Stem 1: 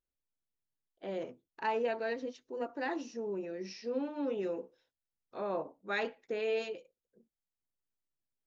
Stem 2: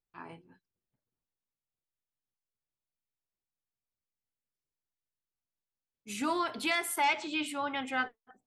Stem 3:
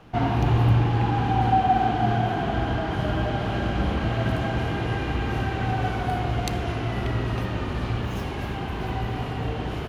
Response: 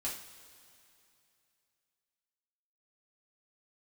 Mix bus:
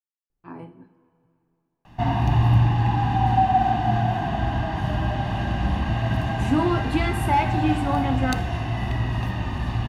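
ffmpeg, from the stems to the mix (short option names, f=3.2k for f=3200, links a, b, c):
-filter_complex "[1:a]tiltshelf=f=970:g=9.5,adelay=300,volume=1.5dB,asplit=2[a][b];[b]volume=-5dB[c];[2:a]aecho=1:1:1.1:0.71,adelay=1850,volume=-2dB[d];[3:a]atrim=start_sample=2205[e];[c][e]afir=irnorm=-1:irlink=0[f];[a][d][f]amix=inputs=3:normalize=0"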